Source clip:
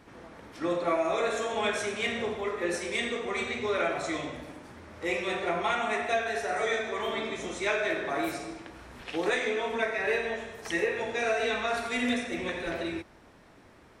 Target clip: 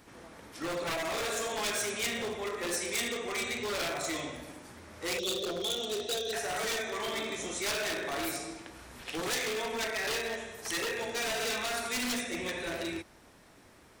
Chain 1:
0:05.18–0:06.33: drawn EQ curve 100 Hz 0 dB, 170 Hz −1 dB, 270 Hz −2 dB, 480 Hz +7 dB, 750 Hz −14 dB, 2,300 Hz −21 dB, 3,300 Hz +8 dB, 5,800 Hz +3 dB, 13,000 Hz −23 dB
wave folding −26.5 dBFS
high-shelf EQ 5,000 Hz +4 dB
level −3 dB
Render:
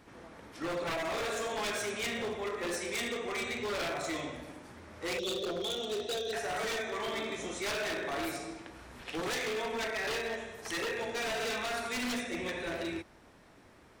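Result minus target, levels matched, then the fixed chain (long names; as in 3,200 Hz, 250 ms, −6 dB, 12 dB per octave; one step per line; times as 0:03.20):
8,000 Hz band −4.5 dB
0:05.18–0:06.33: drawn EQ curve 100 Hz 0 dB, 170 Hz −1 dB, 270 Hz −2 dB, 480 Hz +7 dB, 750 Hz −14 dB, 2,300 Hz −21 dB, 3,300 Hz +8 dB, 5,800 Hz +3 dB, 13,000 Hz −23 dB
wave folding −26.5 dBFS
high-shelf EQ 5,000 Hz +13.5 dB
level −3 dB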